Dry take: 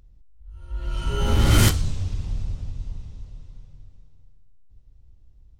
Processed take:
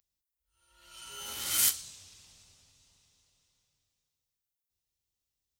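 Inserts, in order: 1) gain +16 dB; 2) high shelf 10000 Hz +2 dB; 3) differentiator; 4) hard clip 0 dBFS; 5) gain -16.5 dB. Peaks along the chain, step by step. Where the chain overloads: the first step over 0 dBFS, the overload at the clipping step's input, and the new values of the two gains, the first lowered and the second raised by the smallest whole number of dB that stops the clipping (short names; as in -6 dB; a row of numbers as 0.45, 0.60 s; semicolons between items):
+10.5, +10.5, +8.5, 0.0, -16.5 dBFS; step 1, 8.5 dB; step 1 +7 dB, step 5 -7.5 dB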